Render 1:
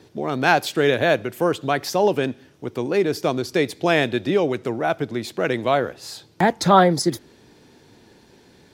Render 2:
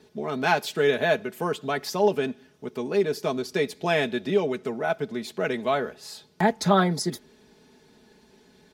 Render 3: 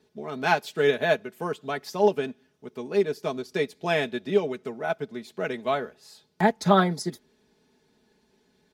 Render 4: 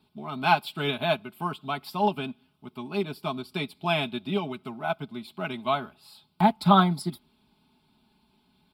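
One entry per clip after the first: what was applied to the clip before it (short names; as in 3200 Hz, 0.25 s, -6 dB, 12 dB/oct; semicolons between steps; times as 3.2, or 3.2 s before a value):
comb 4.7 ms, depth 70%; gain -6.5 dB
upward expander 1.5:1, over -38 dBFS; gain +1.5 dB
fixed phaser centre 1800 Hz, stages 6; gain +4 dB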